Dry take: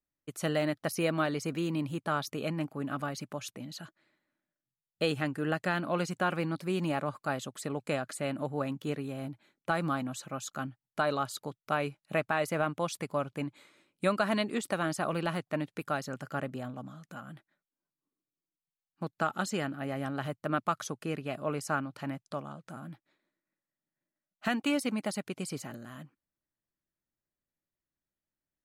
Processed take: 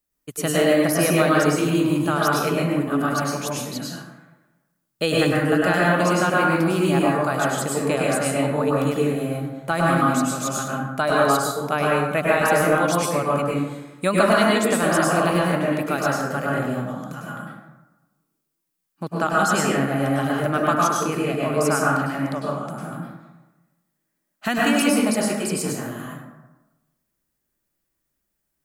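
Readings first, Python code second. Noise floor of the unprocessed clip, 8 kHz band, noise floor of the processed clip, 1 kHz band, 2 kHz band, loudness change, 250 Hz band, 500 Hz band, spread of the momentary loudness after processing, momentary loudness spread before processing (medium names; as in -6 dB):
under -85 dBFS, +15.5 dB, -77 dBFS, +13.0 dB, +13.0 dB, +12.5 dB, +12.5 dB, +13.0 dB, 12 LU, 12 LU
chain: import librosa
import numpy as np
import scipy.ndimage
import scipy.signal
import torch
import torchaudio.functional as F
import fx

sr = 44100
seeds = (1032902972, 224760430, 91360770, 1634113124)

y = fx.high_shelf(x, sr, hz=7400.0, db=10.0)
y = fx.rev_plate(y, sr, seeds[0], rt60_s=1.1, hf_ratio=0.45, predelay_ms=90, drr_db=-5.0)
y = y * librosa.db_to_amplitude(6.0)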